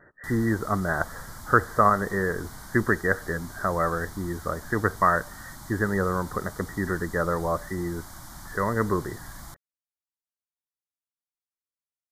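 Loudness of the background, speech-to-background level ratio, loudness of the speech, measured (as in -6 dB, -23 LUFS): -43.0 LUFS, 16.5 dB, -26.5 LUFS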